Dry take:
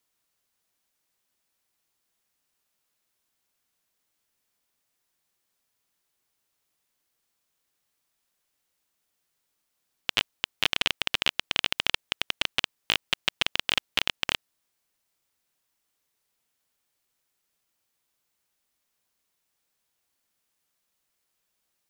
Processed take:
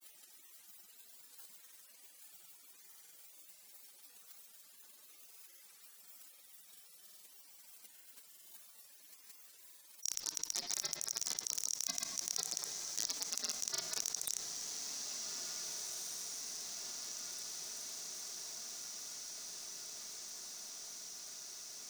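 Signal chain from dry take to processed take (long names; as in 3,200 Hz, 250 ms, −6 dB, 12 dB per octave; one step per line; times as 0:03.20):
gate on every frequency bin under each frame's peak −20 dB weak
high-pass filter 170 Hz 24 dB per octave
high-shelf EQ 4,400 Hz +10.5 dB
in parallel at +2 dB: output level in coarse steps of 11 dB
on the sum: granular cloud 100 ms, pitch spread up and down by 0 semitones
soft clipping −27.5 dBFS, distortion −2 dB
feedback delay with all-pass diffusion 1,790 ms, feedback 50%, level −16 dB
on a send at −17 dB: convolution reverb RT60 2.1 s, pre-delay 22 ms
on the sum: envelope flattener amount 70%
level +2.5 dB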